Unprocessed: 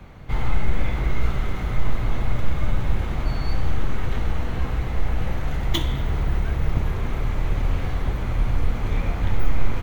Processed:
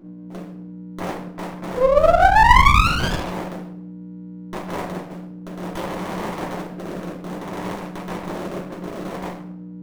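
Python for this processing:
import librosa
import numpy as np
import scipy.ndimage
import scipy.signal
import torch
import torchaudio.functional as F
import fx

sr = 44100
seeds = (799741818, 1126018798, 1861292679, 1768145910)

y = fx.high_shelf(x, sr, hz=3300.0, db=6.5)
y = fx.schmitt(y, sr, flips_db=-18.5)
y = fx.rotary(y, sr, hz=0.6)
y = fx.spec_paint(y, sr, seeds[0], shape='rise', start_s=1.74, length_s=1.41, low_hz=490.0, high_hz=1800.0, level_db=-20.0)
y = fx.graphic_eq(y, sr, hz=(250, 1000, 2000, 4000), db=(-10, 8, -5, -4))
y = fx.add_hum(y, sr, base_hz=60, snr_db=13)
y = scipy.signal.sosfilt(scipy.signal.ellip(4, 1.0, 40, 180.0, 'highpass', fs=sr, output='sos'), y)
y = fx.room_shoebox(y, sr, seeds[1], volume_m3=130.0, walls='mixed', distance_m=3.0)
y = fx.running_max(y, sr, window=17)
y = F.gain(torch.from_numpy(y), -5.5).numpy()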